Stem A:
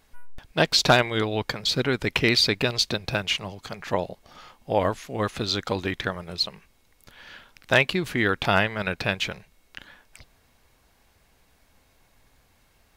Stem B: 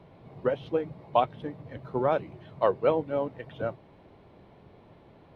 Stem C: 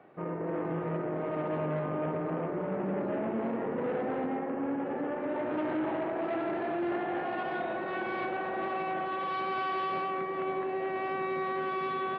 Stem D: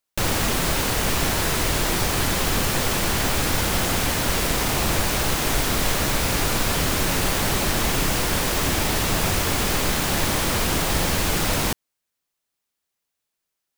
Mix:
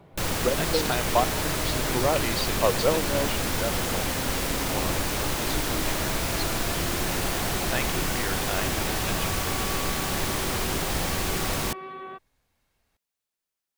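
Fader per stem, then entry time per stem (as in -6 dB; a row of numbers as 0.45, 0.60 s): -11.5, +0.5, -6.0, -5.5 dB; 0.00, 0.00, 0.00, 0.00 s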